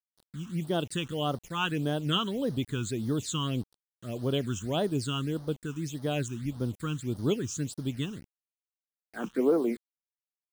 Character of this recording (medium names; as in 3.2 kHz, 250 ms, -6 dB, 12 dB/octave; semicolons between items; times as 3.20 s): a quantiser's noise floor 8-bit, dither none; phasing stages 8, 1.7 Hz, lowest notch 580–2500 Hz